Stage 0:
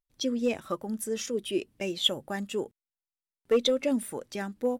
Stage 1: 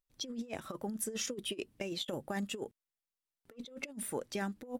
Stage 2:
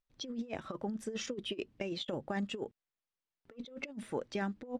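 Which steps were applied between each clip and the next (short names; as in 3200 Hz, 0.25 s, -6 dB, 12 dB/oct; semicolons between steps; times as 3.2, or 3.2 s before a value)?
negative-ratio compressor -33 dBFS, ratio -0.5; gain -5.5 dB
air absorption 130 m; gain +1.5 dB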